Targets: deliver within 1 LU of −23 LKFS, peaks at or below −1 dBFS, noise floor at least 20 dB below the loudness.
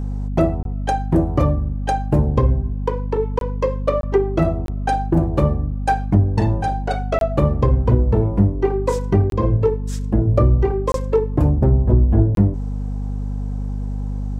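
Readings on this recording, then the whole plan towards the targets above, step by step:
number of dropouts 8; longest dropout 22 ms; mains hum 50 Hz; hum harmonics up to 250 Hz; level of the hum −21 dBFS; integrated loudness −19.5 LKFS; sample peak −2.0 dBFS; target loudness −23.0 LKFS
→ repair the gap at 0:00.63/0:03.39/0:04.01/0:04.66/0:07.19/0:09.30/0:10.92/0:12.35, 22 ms
hum removal 50 Hz, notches 5
level −3.5 dB

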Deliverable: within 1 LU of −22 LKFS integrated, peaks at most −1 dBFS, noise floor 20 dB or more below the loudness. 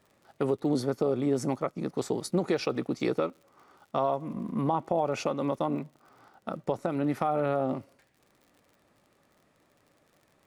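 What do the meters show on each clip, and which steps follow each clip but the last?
crackle rate 49 per second; integrated loudness −30.0 LKFS; sample peak −13.5 dBFS; target loudness −22.0 LKFS
→ click removal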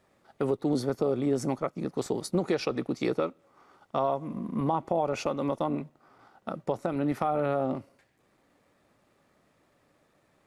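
crackle rate 0 per second; integrated loudness −30.0 LKFS; sample peak −13.5 dBFS; target loudness −22.0 LKFS
→ level +8 dB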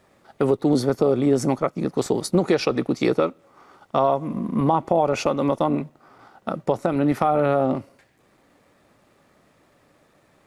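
integrated loudness −22.0 LKFS; sample peak −5.5 dBFS; background noise floor −61 dBFS

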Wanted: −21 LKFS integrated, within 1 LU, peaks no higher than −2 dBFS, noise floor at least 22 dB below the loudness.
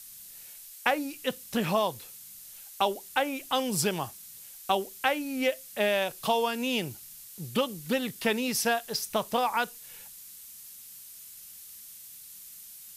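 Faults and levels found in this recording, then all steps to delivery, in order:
background noise floor −48 dBFS; target noise floor −51 dBFS; integrated loudness −29.0 LKFS; sample peak −8.0 dBFS; target loudness −21.0 LKFS
→ noise reduction from a noise print 6 dB
level +8 dB
brickwall limiter −2 dBFS

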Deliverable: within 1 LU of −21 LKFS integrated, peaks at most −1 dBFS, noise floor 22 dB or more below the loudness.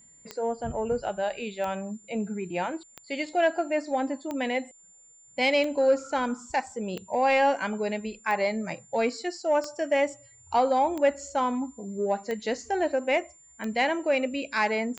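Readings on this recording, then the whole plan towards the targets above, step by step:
number of clicks 12; interfering tone 7,200 Hz; level of the tone −53 dBFS; integrated loudness −27.5 LKFS; sample peak −13.0 dBFS; target loudness −21.0 LKFS
→ click removal
notch filter 7,200 Hz, Q 30
level +6.5 dB

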